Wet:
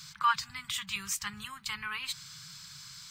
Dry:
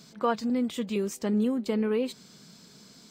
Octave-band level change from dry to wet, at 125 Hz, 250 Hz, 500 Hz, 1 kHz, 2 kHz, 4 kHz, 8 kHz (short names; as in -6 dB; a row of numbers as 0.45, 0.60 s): n/a, -25.5 dB, -35.5 dB, +3.0 dB, +7.0 dB, +7.0 dB, +7.0 dB